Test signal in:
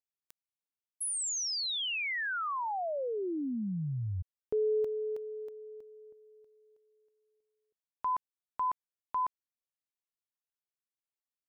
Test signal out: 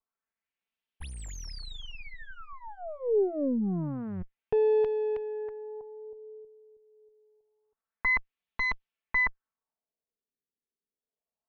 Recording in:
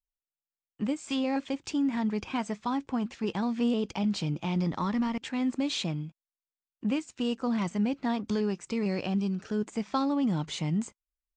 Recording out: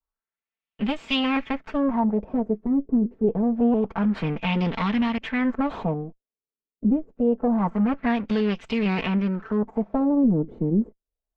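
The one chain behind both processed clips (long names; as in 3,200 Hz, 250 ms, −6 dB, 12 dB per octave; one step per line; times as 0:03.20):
lower of the sound and its delayed copy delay 4.5 ms
pitch vibrato 0.51 Hz 12 cents
auto-filter low-pass sine 0.26 Hz 350–3,100 Hz
level +5.5 dB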